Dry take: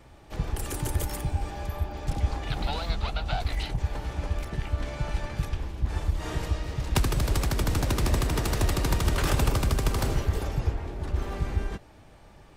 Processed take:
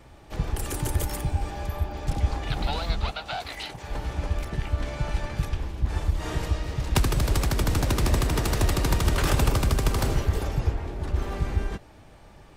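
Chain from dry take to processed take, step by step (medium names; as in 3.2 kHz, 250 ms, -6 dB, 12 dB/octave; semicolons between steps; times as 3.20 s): 3.11–3.88 s: high-pass 500 Hz 6 dB/octave; trim +2 dB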